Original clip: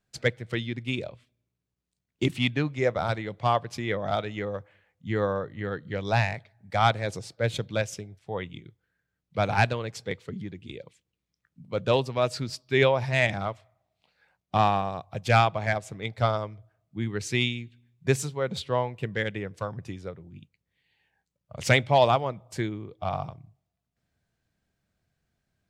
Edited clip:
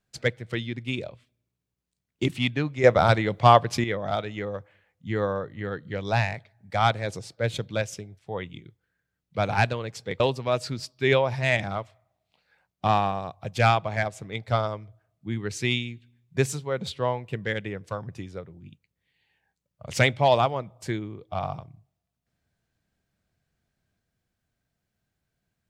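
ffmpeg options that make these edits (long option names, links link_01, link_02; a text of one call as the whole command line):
ffmpeg -i in.wav -filter_complex "[0:a]asplit=4[link_01][link_02][link_03][link_04];[link_01]atrim=end=2.842[link_05];[link_02]atrim=start=2.838:end=3.842,asetpts=PTS-STARTPTS,volume=8.5dB[link_06];[link_03]atrim=start=3.838:end=10.202[link_07];[link_04]atrim=start=11.898[link_08];[link_05][link_06]acrossfade=duration=0.004:curve1=hsin:curve2=hsin[link_09];[link_09][link_07]acrossfade=duration=0.004:curve1=hsin:curve2=hsin[link_10];[link_10][link_08]acrossfade=duration=0.004:curve1=hsin:curve2=hsin" out.wav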